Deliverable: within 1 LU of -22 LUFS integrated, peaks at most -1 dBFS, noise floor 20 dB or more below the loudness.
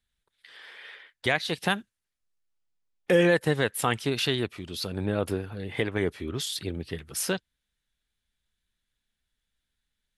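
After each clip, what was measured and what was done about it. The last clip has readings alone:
loudness -28.0 LUFS; peak level -9.0 dBFS; loudness target -22.0 LUFS
-> trim +6 dB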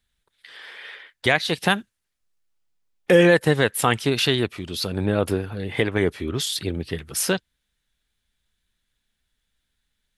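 loudness -22.0 LUFS; peak level -3.0 dBFS; noise floor -78 dBFS

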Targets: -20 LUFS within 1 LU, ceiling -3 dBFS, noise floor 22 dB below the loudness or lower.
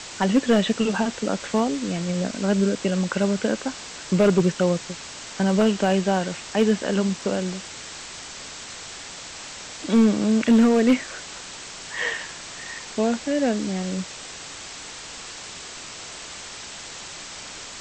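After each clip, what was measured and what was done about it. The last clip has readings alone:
clipped samples 0.5%; clipping level -11.0 dBFS; noise floor -38 dBFS; noise floor target -45 dBFS; loudness -23.0 LUFS; peak level -11.0 dBFS; loudness target -20.0 LUFS
-> clip repair -11 dBFS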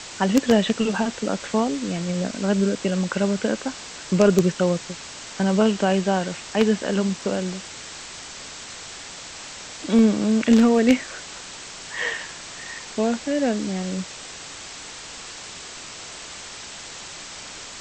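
clipped samples 0.0%; noise floor -38 dBFS; noise floor target -44 dBFS
-> noise reduction 6 dB, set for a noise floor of -38 dBFS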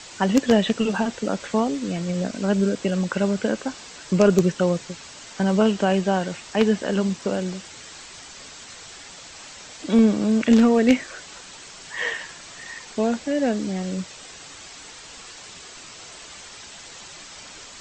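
noise floor -42 dBFS; noise floor target -44 dBFS
-> noise reduction 6 dB, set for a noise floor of -42 dBFS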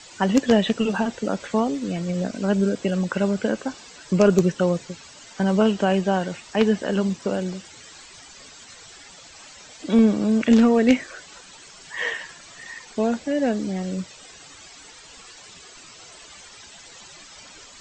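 noise floor -46 dBFS; loudness -22.0 LUFS; peak level -2.5 dBFS; loudness target -20.0 LUFS
-> trim +2 dB; peak limiter -3 dBFS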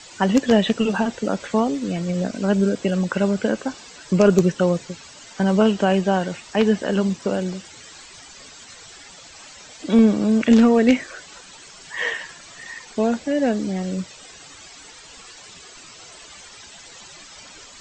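loudness -20.5 LUFS; peak level -3.0 dBFS; noise floor -44 dBFS

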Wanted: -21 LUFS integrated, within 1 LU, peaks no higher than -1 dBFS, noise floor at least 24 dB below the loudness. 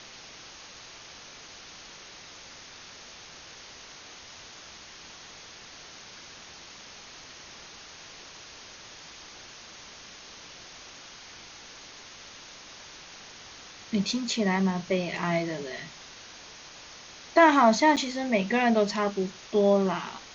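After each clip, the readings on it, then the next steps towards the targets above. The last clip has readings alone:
dropouts 1; longest dropout 7.8 ms; noise floor -47 dBFS; noise floor target -49 dBFS; loudness -25.0 LUFS; peak level -7.0 dBFS; loudness target -21.0 LUFS
-> interpolate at 17.96 s, 7.8 ms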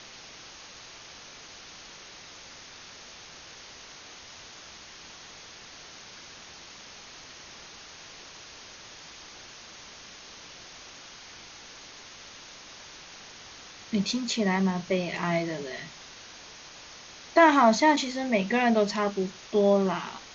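dropouts 0; noise floor -47 dBFS; noise floor target -49 dBFS
-> noise reduction 6 dB, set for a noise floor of -47 dBFS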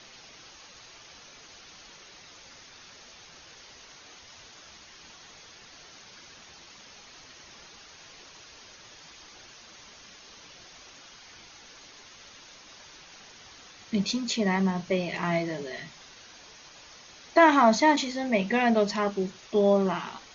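noise floor -51 dBFS; loudness -25.0 LUFS; peak level -7.5 dBFS; loudness target -21.0 LUFS
-> trim +4 dB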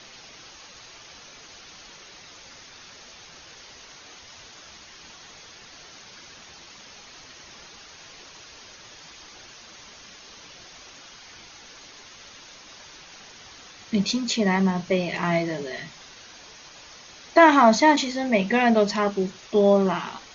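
loudness -21.0 LUFS; peak level -3.5 dBFS; noise floor -47 dBFS

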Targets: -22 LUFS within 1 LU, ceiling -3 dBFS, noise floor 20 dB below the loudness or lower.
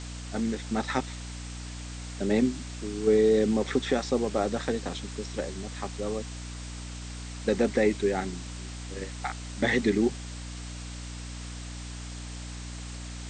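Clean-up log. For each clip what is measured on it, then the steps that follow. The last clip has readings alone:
hum 60 Hz; highest harmonic 300 Hz; hum level -37 dBFS; noise floor -39 dBFS; noise floor target -50 dBFS; loudness -30.0 LUFS; peak level -12.0 dBFS; loudness target -22.0 LUFS
-> hum notches 60/120/180/240/300 Hz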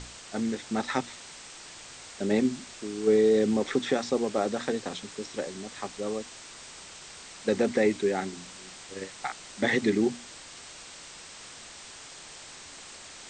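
hum not found; noise floor -46 dBFS; noise floor target -49 dBFS
-> noise reduction 6 dB, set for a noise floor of -46 dBFS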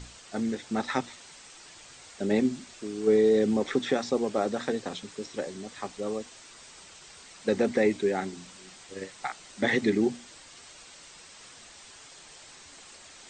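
noise floor -50 dBFS; loudness -28.5 LUFS; peak level -12.0 dBFS; loudness target -22.0 LUFS
-> trim +6.5 dB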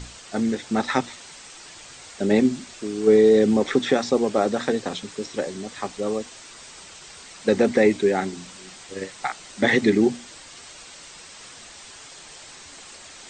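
loudness -22.0 LUFS; peak level -5.5 dBFS; noise floor -44 dBFS

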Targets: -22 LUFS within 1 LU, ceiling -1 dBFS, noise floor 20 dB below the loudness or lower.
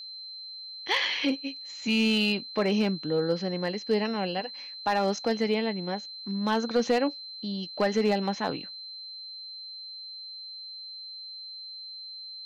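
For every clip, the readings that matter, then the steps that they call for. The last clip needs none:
clipped samples 0.3%; clipping level -16.5 dBFS; steady tone 4.1 kHz; tone level -39 dBFS; loudness -29.5 LUFS; peak level -16.5 dBFS; loudness target -22.0 LUFS
-> clip repair -16.5 dBFS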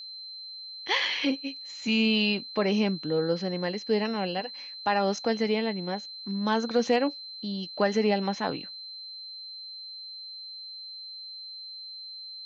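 clipped samples 0.0%; steady tone 4.1 kHz; tone level -39 dBFS
-> band-stop 4.1 kHz, Q 30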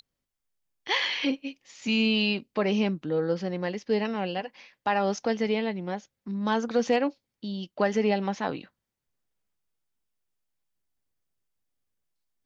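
steady tone not found; loudness -28.0 LUFS; peak level -11.0 dBFS; loudness target -22.0 LUFS
-> trim +6 dB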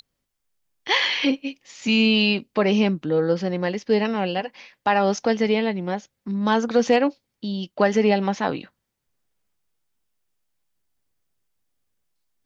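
loudness -22.0 LUFS; peak level -5.0 dBFS; noise floor -79 dBFS

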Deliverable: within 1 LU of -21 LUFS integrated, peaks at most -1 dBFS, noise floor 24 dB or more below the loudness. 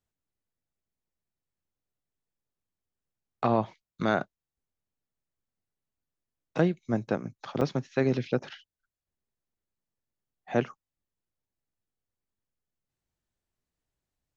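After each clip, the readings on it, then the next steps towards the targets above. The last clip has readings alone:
dropouts 1; longest dropout 2.2 ms; loudness -30.0 LUFS; peak level -11.0 dBFS; loudness target -21.0 LUFS
-> interpolate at 7.61 s, 2.2 ms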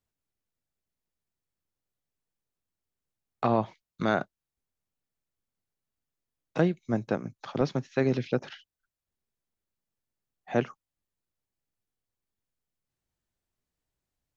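dropouts 0; loudness -30.0 LUFS; peak level -11.0 dBFS; loudness target -21.0 LUFS
-> trim +9 dB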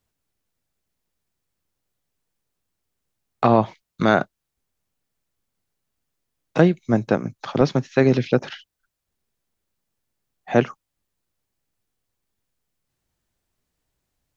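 loudness -21.0 LUFS; peak level -2.0 dBFS; noise floor -81 dBFS

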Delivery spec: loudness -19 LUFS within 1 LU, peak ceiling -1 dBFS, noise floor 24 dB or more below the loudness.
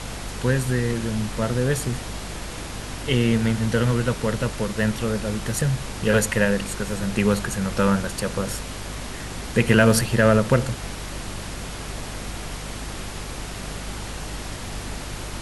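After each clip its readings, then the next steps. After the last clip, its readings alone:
hum 50 Hz; highest harmonic 250 Hz; hum level -34 dBFS; noise floor -34 dBFS; noise floor target -49 dBFS; loudness -24.5 LUFS; peak level -2.0 dBFS; loudness target -19.0 LUFS
-> hum notches 50/100/150/200/250 Hz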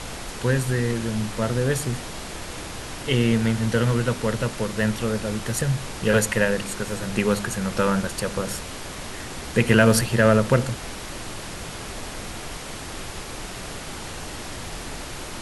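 hum not found; noise floor -35 dBFS; noise floor target -49 dBFS
-> noise print and reduce 14 dB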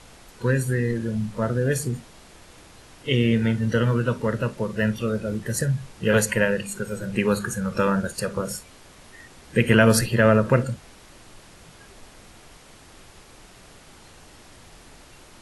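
noise floor -49 dBFS; loudness -23.0 LUFS; peak level -2.0 dBFS; loudness target -19.0 LUFS
-> trim +4 dB; peak limiter -1 dBFS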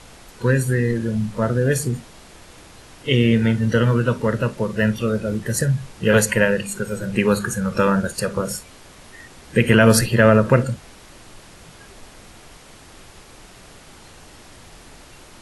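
loudness -19.5 LUFS; peak level -1.0 dBFS; noise floor -45 dBFS

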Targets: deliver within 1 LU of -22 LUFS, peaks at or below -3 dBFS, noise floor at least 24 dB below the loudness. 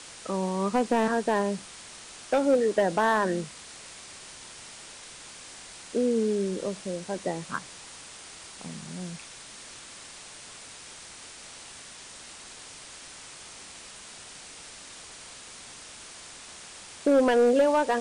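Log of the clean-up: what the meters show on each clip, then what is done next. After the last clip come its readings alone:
clipped samples 0.6%; clipping level -15.5 dBFS; noise floor -46 dBFS; noise floor target -51 dBFS; loudness -26.5 LUFS; peak level -15.5 dBFS; loudness target -22.0 LUFS
-> clip repair -15.5 dBFS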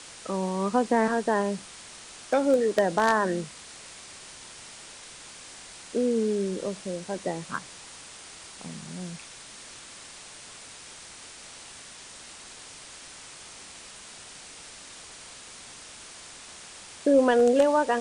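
clipped samples 0.0%; noise floor -46 dBFS; noise floor target -50 dBFS
-> noise reduction 6 dB, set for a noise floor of -46 dBFS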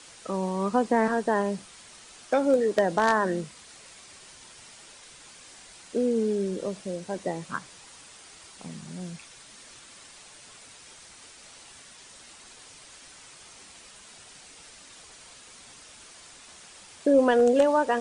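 noise floor -50 dBFS; loudness -25.5 LUFS; peak level -7.0 dBFS; loudness target -22.0 LUFS
-> trim +3.5 dB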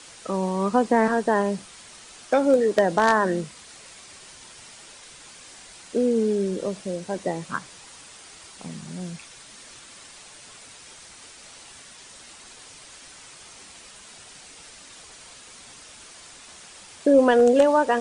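loudness -22.0 LUFS; peak level -3.5 dBFS; noise floor -47 dBFS

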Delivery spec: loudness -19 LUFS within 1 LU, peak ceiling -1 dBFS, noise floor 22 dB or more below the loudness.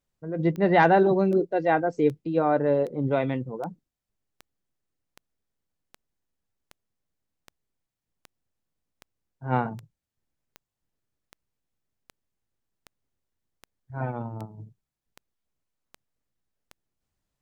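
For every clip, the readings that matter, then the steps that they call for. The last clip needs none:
clicks found 22; loudness -24.5 LUFS; peak level -6.5 dBFS; loudness target -19.0 LUFS
-> de-click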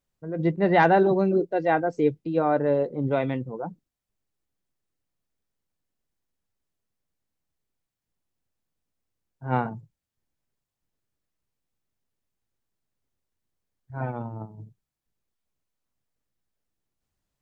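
clicks found 0; loudness -24.0 LUFS; peak level -6.5 dBFS; loudness target -19.0 LUFS
-> trim +5 dB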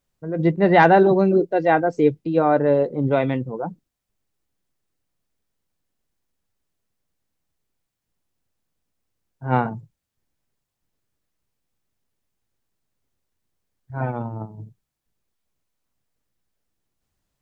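loudness -19.5 LUFS; peak level -1.5 dBFS; noise floor -82 dBFS

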